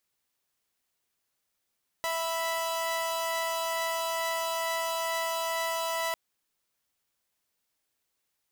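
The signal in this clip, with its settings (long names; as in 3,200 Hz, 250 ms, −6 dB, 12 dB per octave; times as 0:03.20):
held notes E5/B5 saw, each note −29 dBFS 4.10 s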